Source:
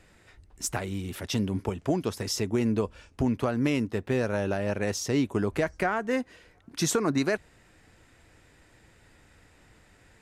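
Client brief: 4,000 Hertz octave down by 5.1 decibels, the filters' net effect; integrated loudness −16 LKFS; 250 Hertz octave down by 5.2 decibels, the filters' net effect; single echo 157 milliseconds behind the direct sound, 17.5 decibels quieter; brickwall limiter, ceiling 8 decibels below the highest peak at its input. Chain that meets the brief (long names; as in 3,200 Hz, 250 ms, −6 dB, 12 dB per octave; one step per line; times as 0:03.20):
parametric band 250 Hz −6.5 dB
parametric band 4,000 Hz −7.5 dB
brickwall limiter −22.5 dBFS
single-tap delay 157 ms −17.5 dB
level +18 dB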